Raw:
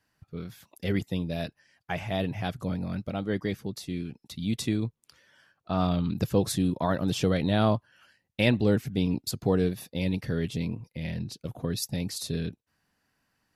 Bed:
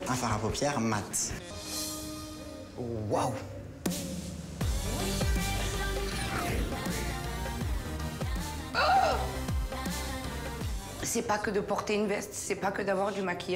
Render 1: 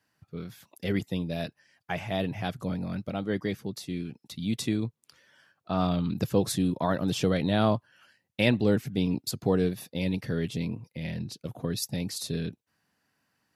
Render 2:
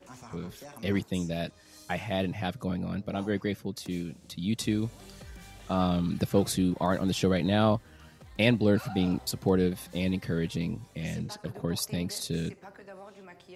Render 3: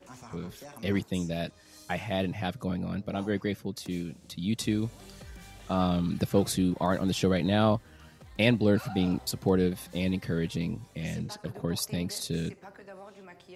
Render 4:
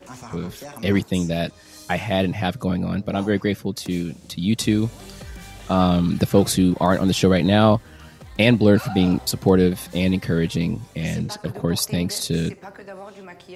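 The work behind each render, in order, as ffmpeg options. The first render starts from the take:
-af "highpass=97"
-filter_complex "[1:a]volume=-17.5dB[a];[0:a][a]amix=inputs=2:normalize=0"
-af anull
-af "volume=9dB,alimiter=limit=-2dB:level=0:latency=1"

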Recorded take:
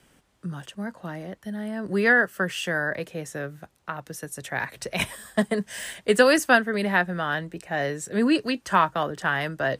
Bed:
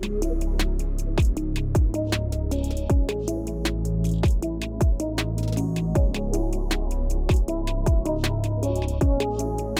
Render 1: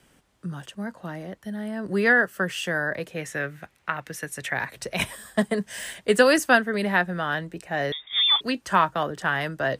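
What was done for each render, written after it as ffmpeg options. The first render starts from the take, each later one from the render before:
-filter_complex "[0:a]asettb=1/sr,asplit=3[a][b][c];[a]atrim=end=3.164[d];[b]atrim=start=3.16:end=4.54,asetpts=PTS-STARTPTS,afade=t=in:d=0.004:c=qsin,afade=t=out:st=1.376:d=0.004:c=qsin,equalizer=f=2.1k:t=o:w=1.2:g=11[e];[c]atrim=start=4.536[f];[d][e]acrossfade=d=0.004:c1=hsin:c2=qsin[g];[g][f]acrossfade=d=0.004:c1=qsin:c2=hsin,asettb=1/sr,asplit=3[h][i][j];[h]atrim=end=7.924[k];[i]atrim=start=7.92:end=8.41,asetpts=PTS-STARTPTS,afade=t=in:d=0.004:c=qsin,afade=t=out:st=0.486:d=0.004:c=qsin,lowpass=f=3.2k:t=q:w=0.5098,lowpass=f=3.2k:t=q:w=0.6013,lowpass=f=3.2k:t=q:w=0.9,lowpass=f=3.2k:t=q:w=2.563,afreqshift=-3800[l];[j]atrim=start=8.406[m];[k][l]acrossfade=d=0.004:c1=hsin:c2=qsin[n];[n][m]acrossfade=d=0.004:c1=qsin:c2=hsin"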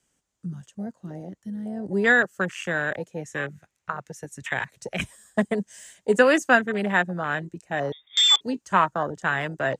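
-af "afwtdn=0.0398,equalizer=f=6.9k:w=1.6:g=15"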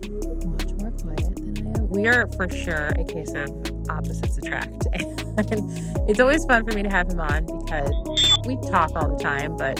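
-filter_complex "[1:a]volume=-4.5dB[a];[0:a][a]amix=inputs=2:normalize=0"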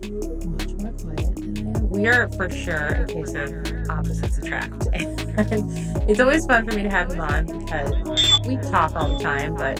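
-filter_complex "[0:a]asplit=2[a][b];[b]adelay=19,volume=-6dB[c];[a][c]amix=inputs=2:normalize=0,asplit=2[d][e];[e]adelay=823,lowpass=f=4.3k:p=1,volume=-19.5dB,asplit=2[f][g];[g]adelay=823,lowpass=f=4.3k:p=1,volume=0.49,asplit=2[h][i];[i]adelay=823,lowpass=f=4.3k:p=1,volume=0.49,asplit=2[j][k];[k]adelay=823,lowpass=f=4.3k:p=1,volume=0.49[l];[d][f][h][j][l]amix=inputs=5:normalize=0"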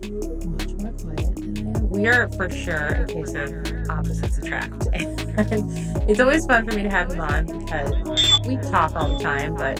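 -af anull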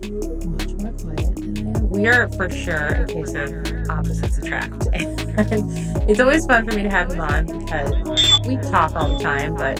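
-af "volume=2.5dB,alimiter=limit=-3dB:level=0:latency=1"

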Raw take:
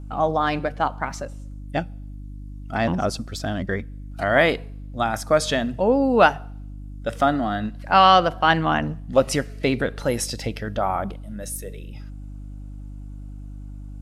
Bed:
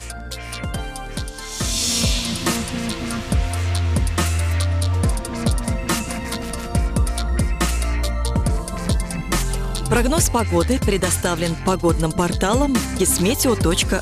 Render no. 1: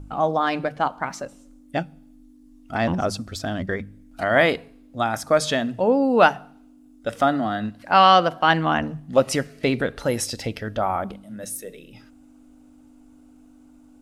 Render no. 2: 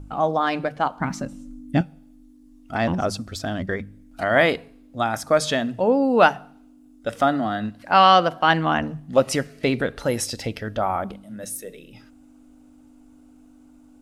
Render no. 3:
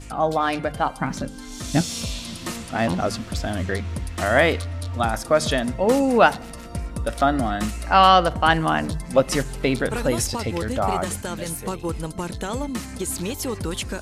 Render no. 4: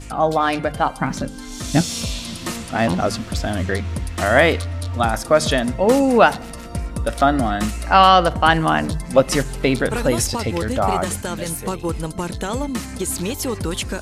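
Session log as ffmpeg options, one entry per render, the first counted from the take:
-af "bandreject=f=50:t=h:w=4,bandreject=f=100:t=h:w=4,bandreject=f=150:t=h:w=4,bandreject=f=200:t=h:w=4"
-filter_complex "[0:a]asettb=1/sr,asplit=3[a][b][c];[a]atrim=end=1.004[d];[b]atrim=start=1:end=1.81,asetpts=PTS-STARTPTS,afade=t=in:d=0.004:c=qsin,afade=t=out:st=0.806:d=0.004:c=qsin,lowshelf=f=340:t=q:w=1.5:g=10[e];[c]atrim=start=1.806[f];[d][e]acrossfade=d=0.004:c1=hsin:c2=qsin[g];[g][f]acrossfade=d=0.004:c1=qsin:c2=hsin"
-filter_complex "[1:a]volume=-10dB[a];[0:a][a]amix=inputs=2:normalize=0"
-af "volume=3.5dB,alimiter=limit=-1dB:level=0:latency=1"

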